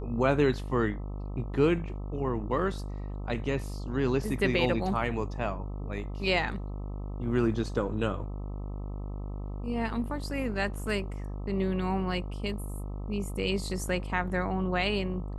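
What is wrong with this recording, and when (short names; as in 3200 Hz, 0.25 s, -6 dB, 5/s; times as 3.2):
buzz 50 Hz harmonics 26 -36 dBFS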